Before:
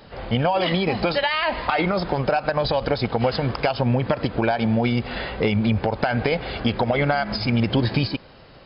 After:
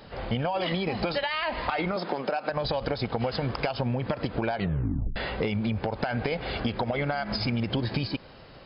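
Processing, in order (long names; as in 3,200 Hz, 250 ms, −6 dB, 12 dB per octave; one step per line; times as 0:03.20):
0:04.54: tape stop 0.62 s
downward compressor, threshold −23 dBFS, peak gain reduction 7.5 dB
0:01.96–0:02.50: high-pass filter 200 Hz 24 dB per octave
level −1.5 dB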